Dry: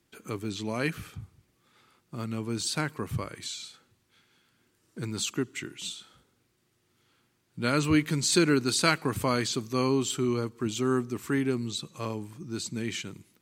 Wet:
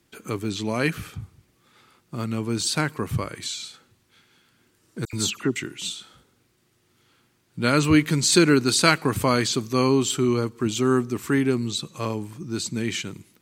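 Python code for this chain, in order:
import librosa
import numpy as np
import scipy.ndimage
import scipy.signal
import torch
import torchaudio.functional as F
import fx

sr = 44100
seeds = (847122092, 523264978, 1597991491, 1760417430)

y = fx.dispersion(x, sr, late='lows', ms=79.0, hz=2700.0, at=(5.05, 5.56))
y = F.gain(torch.from_numpy(y), 6.0).numpy()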